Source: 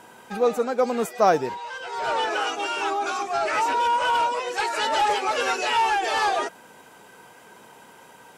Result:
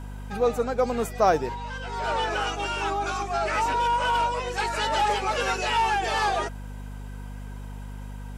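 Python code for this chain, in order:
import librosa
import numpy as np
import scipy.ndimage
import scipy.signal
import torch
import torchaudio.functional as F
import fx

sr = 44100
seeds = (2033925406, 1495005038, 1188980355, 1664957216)

y = fx.add_hum(x, sr, base_hz=50, snr_db=10)
y = F.gain(torch.from_numpy(y), -2.0).numpy()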